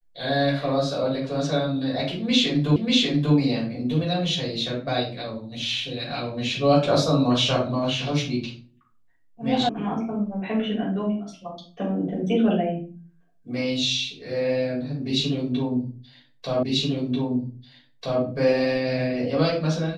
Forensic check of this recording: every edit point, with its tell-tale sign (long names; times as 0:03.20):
0:02.76: the same again, the last 0.59 s
0:09.69: cut off before it has died away
0:16.63: the same again, the last 1.59 s